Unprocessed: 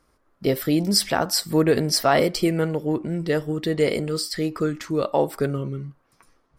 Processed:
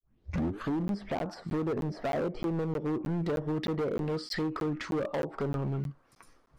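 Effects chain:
turntable start at the beginning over 0.73 s
treble cut that deepens with the level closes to 830 Hz, closed at −18.5 dBFS
downward compressor 12 to 1, threshold −23 dBFS, peak gain reduction 10 dB
gain into a clipping stage and back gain 27.5 dB
regular buffer underruns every 0.31 s, samples 512, zero, from 0:00.88

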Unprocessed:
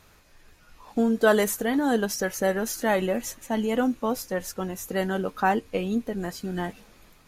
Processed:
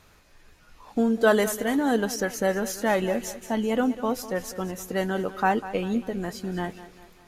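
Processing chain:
high-shelf EQ 11,000 Hz −5.5 dB
on a send: feedback echo with a high-pass in the loop 198 ms, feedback 49%, high-pass 160 Hz, level −14.5 dB

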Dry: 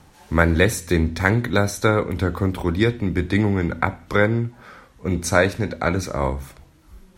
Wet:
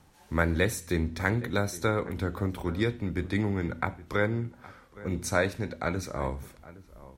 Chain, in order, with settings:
high-shelf EQ 12,000 Hz +4.5 dB
slap from a distant wall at 140 metres, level −18 dB
level −9 dB

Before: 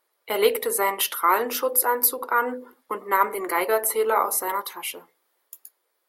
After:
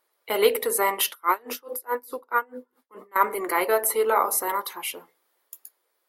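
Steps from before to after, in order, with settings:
0:01.09–0:03.16: tremolo with a sine in dB 4.7 Hz, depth 30 dB

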